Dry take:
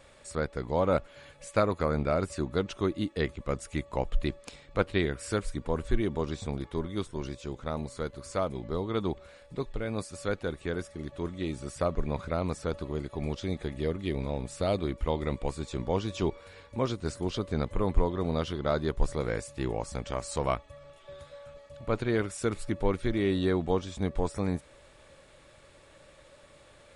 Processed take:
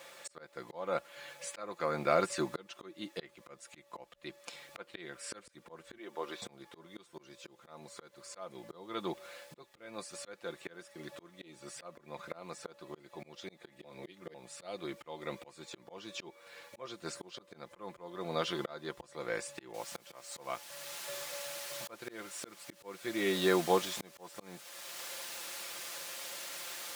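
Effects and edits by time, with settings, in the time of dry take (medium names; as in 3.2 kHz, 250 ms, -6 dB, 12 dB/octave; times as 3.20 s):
5.98–6.42 s: band-pass 350–3300 Hz
13.84–14.34 s: reverse
19.74 s: noise floor step -63 dB -46 dB
whole clip: comb 5.8 ms, depth 58%; slow attack 638 ms; frequency weighting A; trim +3 dB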